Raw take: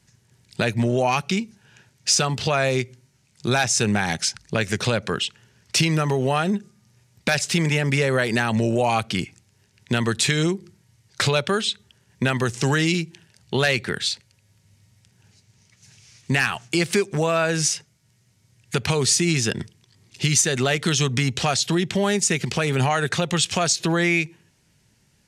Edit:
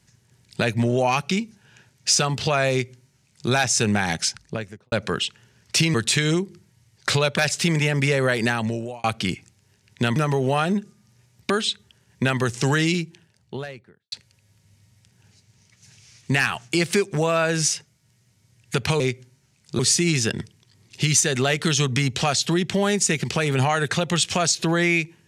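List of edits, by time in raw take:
2.71–3.5 copy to 19
4.26–4.92 studio fade out
5.94–7.28 swap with 10.06–11.5
8.36–8.94 fade out
12.76–14.12 studio fade out

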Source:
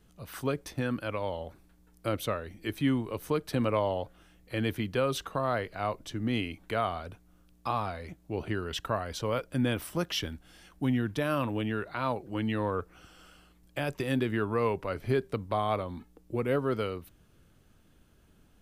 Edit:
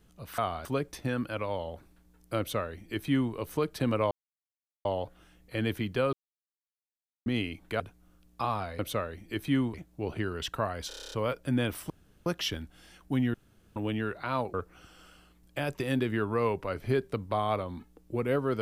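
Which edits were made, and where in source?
2.12–3.07 copy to 8.05
3.84 insert silence 0.74 s
5.12–6.25 mute
6.79–7.06 move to 0.38
9.19 stutter 0.03 s, 9 plays
9.97 insert room tone 0.36 s
11.05–11.47 room tone
12.25–12.74 cut

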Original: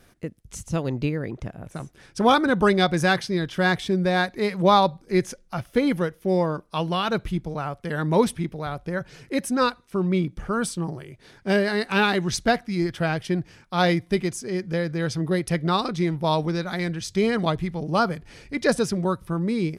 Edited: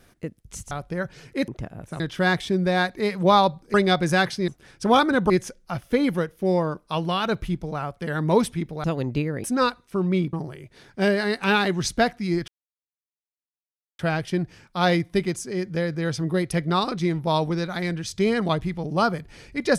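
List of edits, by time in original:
0.71–1.31 swap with 8.67–9.44
1.83–2.65 swap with 3.39–5.13
10.33–10.81 cut
12.96 insert silence 1.51 s

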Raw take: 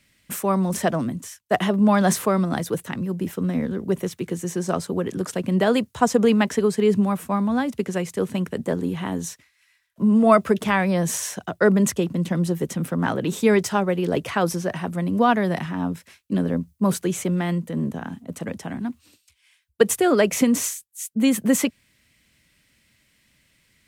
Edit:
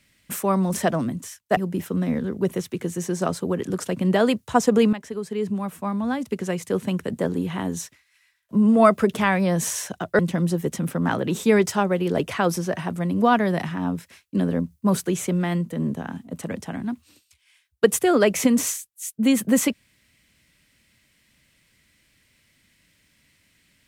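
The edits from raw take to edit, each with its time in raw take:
1.57–3.04 cut
6.4–8.21 fade in linear, from -14 dB
11.66–12.16 cut

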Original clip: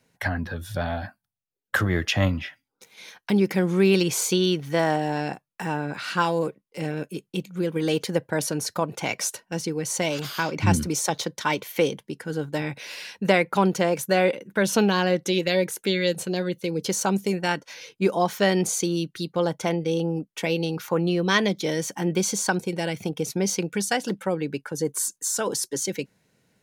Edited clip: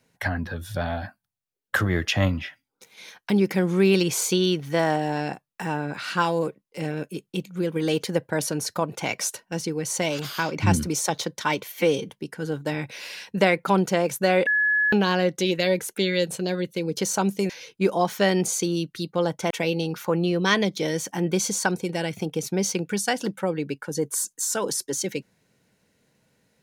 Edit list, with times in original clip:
11.72–11.97 stretch 1.5×
14.34–14.8 bleep 1700 Hz -18 dBFS
17.37–17.7 cut
19.71–20.34 cut

